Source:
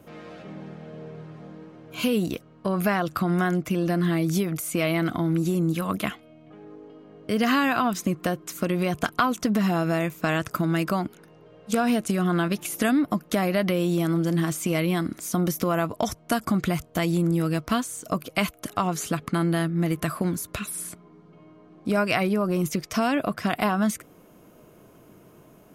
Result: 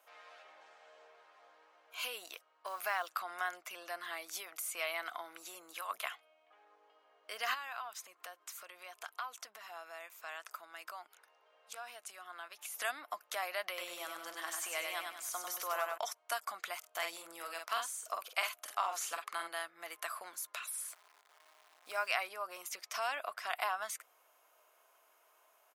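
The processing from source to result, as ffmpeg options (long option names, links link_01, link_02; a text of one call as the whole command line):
ffmpeg -i in.wav -filter_complex "[0:a]asettb=1/sr,asplit=3[link_01][link_02][link_03];[link_01]atrim=end=0.614[link_04];[link_02]atrim=start=0.61:end=1.07,asetpts=PTS-STARTPTS,afade=type=in:duration=0.004:curve=qsin,afade=type=out:start_time=0.456:duration=0.004:curve=qsin,lowpass=frequency=8000:width_type=q:width=2[link_05];[link_03]atrim=start=1.066[link_06];[link_04][link_05]acrossfade=duration=0.004:curve1=hsin:curve2=qsin[link_07];[link_07][link_06]acrossfade=duration=0.004:curve1=qsin:curve2=hsin,asettb=1/sr,asplit=3[link_08][link_09][link_10];[link_08]atrim=end=2.664[link_11];[link_09]atrim=start=2.66:end=3.08,asetpts=PTS-STARTPTS,afade=type=in:duration=0.004:curve=qsin,afade=type=out:start_time=0.416:duration=0.004:curve=qsin,acrusher=bits=7:mode=log:mix=0:aa=0.000001[link_12];[link_10]atrim=start=3.076[link_13];[link_11][link_12]acrossfade=duration=0.004:curve1=hsin:curve2=qsin[link_14];[link_14][link_13]acrossfade=duration=0.004:curve1=qsin:curve2=hsin,asplit=3[link_15][link_16][link_17];[link_15]afade=type=out:start_time=7.53:duration=0.02[link_18];[link_16]acompressor=threshold=-36dB:ratio=2:attack=3.2:release=140:knee=1:detection=peak,afade=type=in:start_time=7.53:duration=0.02,afade=type=out:start_time=12.74:duration=0.02[link_19];[link_17]afade=type=in:start_time=12.74:duration=0.02[link_20];[link_18][link_19][link_20]amix=inputs=3:normalize=0,asettb=1/sr,asplit=3[link_21][link_22][link_23];[link_21]atrim=end=13.664[link_24];[link_22]atrim=start=13.66:end=15.98,asetpts=PTS-STARTPTS,afade=type=in:duration=0.004:curve=qsin,afade=type=out:start_time=2.316:duration=0.004:curve=qsin,aecho=1:1:97|194|291|388|485:0.631|0.265|0.111|0.0467|0.0196,atrim=end_sample=102312[link_25];[link_23]atrim=start=15.976[link_26];[link_24][link_25]acrossfade=duration=0.004:curve1=hsin:curve2=qsin[link_27];[link_27][link_26]acrossfade=duration=0.004:curve1=qsin:curve2=hsin,asplit=3[link_28][link_29][link_30];[link_28]afade=type=out:start_time=16.83:duration=0.02[link_31];[link_29]asplit=2[link_32][link_33];[link_33]adelay=48,volume=-4.5dB[link_34];[link_32][link_34]amix=inputs=2:normalize=0,afade=type=in:start_time=16.83:duration=0.02,afade=type=out:start_time=19.48:duration=0.02[link_35];[link_30]afade=type=in:start_time=19.48:duration=0.02[link_36];[link_31][link_35][link_36]amix=inputs=3:normalize=0,asettb=1/sr,asplit=3[link_37][link_38][link_39];[link_37]atrim=end=20.884[link_40];[link_38]atrim=start=20.88:end=22.08,asetpts=PTS-STARTPTS,afade=type=in:duration=0.004:curve=qsin,afade=type=out:start_time=1.196:duration=0.004:curve=qsin,acrusher=bits=9:dc=4:mix=0:aa=0.000001[link_41];[link_39]atrim=start=22.076[link_42];[link_40][link_41]acrossfade=duration=0.004:curve1=hsin:curve2=qsin[link_43];[link_43][link_42]acrossfade=duration=0.004:curve1=qsin:curve2=hsin,highpass=frequency=740:width=0.5412,highpass=frequency=740:width=1.3066,volume=-8dB" out.wav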